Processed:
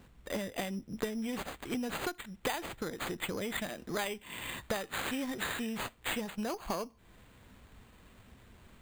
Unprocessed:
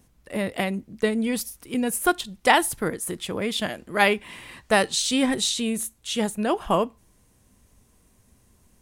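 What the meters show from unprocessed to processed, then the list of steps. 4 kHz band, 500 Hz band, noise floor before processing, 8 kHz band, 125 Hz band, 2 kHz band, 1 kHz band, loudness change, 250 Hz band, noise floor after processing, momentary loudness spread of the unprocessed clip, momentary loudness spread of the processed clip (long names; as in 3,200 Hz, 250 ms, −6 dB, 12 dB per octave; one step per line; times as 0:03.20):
−13.0 dB, −13.0 dB, −61 dBFS, −15.0 dB, −9.5 dB, −12.0 dB, −14.5 dB, −12.5 dB, −11.5 dB, −61 dBFS, 9 LU, 4 LU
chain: downward compressor 12 to 1, threshold −35 dBFS, peak gain reduction 23 dB
harmonic generator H 6 −22 dB, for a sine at −21 dBFS
bad sample-rate conversion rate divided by 8×, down none, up hold
level +2.5 dB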